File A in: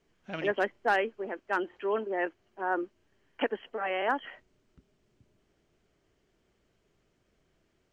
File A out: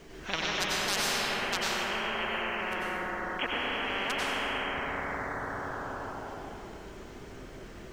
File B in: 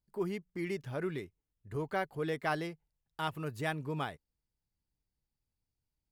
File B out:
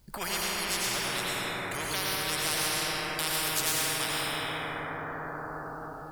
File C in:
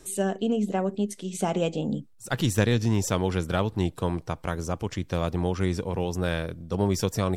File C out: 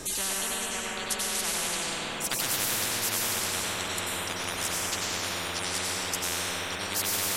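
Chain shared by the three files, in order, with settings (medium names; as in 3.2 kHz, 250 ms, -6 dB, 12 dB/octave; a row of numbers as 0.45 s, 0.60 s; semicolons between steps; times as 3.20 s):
reverb removal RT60 1.7 s; plate-style reverb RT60 3 s, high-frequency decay 0.4×, pre-delay 80 ms, DRR -8 dB; spectrum-flattening compressor 10:1; peak normalisation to -12 dBFS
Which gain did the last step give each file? -4.0 dB, +2.5 dB, -7.0 dB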